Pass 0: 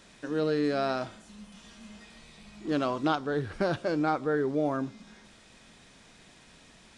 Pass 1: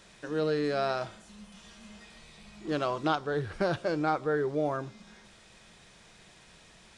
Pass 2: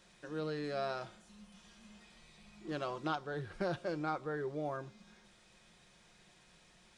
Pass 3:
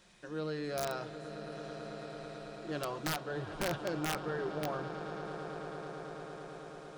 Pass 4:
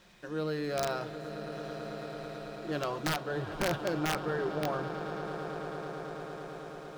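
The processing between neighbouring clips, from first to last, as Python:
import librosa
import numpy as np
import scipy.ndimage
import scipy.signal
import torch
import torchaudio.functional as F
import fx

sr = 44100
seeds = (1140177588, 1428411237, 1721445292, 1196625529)

y1 = fx.peak_eq(x, sr, hz=260.0, db=-14.5, octaves=0.22)
y2 = y1 + 0.32 * np.pad(y1, (int(5.6 * sr / 1000.0), 0))[:len(y1)]
y2 = y2 * 10.0 ** (-8.5 / 20.0)
y3 = fx.echo_swell(y2, sr, ms=110, loudest=8, wet_db=-15)
y3 = (np.mod(10.0 ** (27.0 / 20.0) * y3 + 1.0, 2.0) - 1.0) / 10.0 ** (27.0 / 20.0)
y3 = y3 * 10.0 ** (1.0 / 20.0)
y4 = scipy.ndimage.median_filter(y3, 5, mode='constant')
y4 = y4 * 10.0 ** (4.0 / 20.0)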